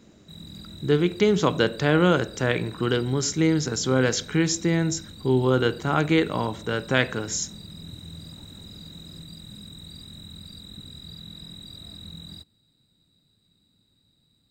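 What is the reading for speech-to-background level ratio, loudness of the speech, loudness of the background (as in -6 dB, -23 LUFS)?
18.5 dB, -23.5 LUFS, -42.0 LUFS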